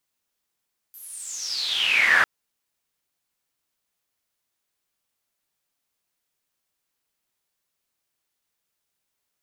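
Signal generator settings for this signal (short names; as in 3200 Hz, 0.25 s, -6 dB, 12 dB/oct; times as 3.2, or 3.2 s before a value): swept filtered noise pink, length 1.30 s bandpass, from 13000 Hz, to 1500 Hz, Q 11, exponential, gain ramp +26 dB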